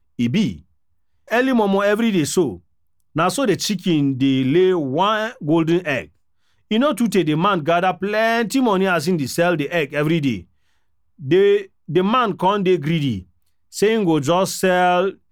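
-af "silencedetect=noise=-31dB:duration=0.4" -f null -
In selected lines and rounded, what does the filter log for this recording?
silence_start: 0.56
silence_end: 1.31 | silence_duration: 0.74
silence_start: 2.57
silence_end: 3.16 | silence_duration: 0.59
silence_start: 6.04
silence_end: 6.71 | silence_duration: 0.67
silence_start: 10.40
silence_end: 11.22 | silence_duration: 0.82
silence_start: 13.20
silence_end: 13.74 | silence_duration: 0.53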